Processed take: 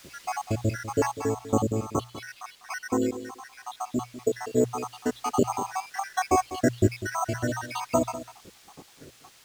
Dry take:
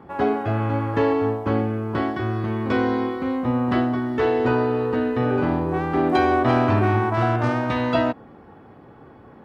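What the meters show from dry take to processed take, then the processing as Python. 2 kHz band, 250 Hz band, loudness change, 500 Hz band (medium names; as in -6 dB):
-7.5 dB, -8.0 dB, -6.5 dB, -7.0 dB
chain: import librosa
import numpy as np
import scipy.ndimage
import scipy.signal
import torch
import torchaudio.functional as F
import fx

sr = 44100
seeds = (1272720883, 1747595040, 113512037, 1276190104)

p1 = fx.spec_dropout(x, sr, seeds[0], share_pct=82)
p2 = fx.tremolo_random(p1, sr, seeds[1], hz=3.5, depth_pct=55)
p3 = fx.hum_notches(p2, sr, base_hz=60, count=2)
p4 = np.repeat(p3[::6], 6)[:len(p3)]
p5 = fx.quant_dither(p4, sr, seeds[2], bits=8, dither='triangular')
p6 = p4 + (p5 * 10.0 ** (-6.0 / 20.0))
p7 = fx.high_shelf(p6, sr, hz=2700.0, db=-9.5)
p8 = fx.rider(p7, sr, range_db=5, speed_s=2.0)
p9 = fx.peak_eq(p8, sr, hz=4900.0, db=11.5, octaves=2.9)
p10 = p9 + fx.echo_single(p9, sr, ms=198, db=-14.0, dry=0)
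y = p10 * 10.0 ** (-1.5 / 20.0)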